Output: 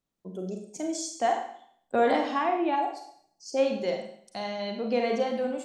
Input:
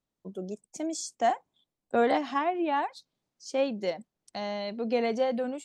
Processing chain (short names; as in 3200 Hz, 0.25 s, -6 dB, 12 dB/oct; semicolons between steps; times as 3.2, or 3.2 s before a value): spectral gain 2.76–3.57, 870–4200 Hz -17 dB; Schroeder reverb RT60 0.62 s, combs from 33 ms, DRR 3 dB